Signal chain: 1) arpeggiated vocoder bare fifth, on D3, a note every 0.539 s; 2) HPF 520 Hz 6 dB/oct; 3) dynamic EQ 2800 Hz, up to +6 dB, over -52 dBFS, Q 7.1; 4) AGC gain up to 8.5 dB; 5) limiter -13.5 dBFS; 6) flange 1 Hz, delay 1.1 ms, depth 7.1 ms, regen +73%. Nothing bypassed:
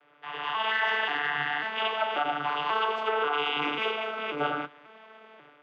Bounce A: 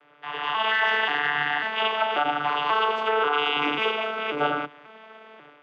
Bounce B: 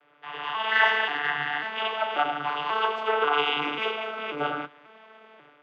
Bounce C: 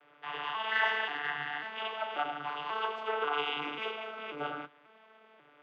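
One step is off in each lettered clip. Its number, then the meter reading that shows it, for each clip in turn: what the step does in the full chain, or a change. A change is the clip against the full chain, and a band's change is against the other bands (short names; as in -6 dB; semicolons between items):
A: 6, crest factor change -2.5 dB; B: 5, crest factor change +5.5 dB; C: 4, crest factor change +5.0 dB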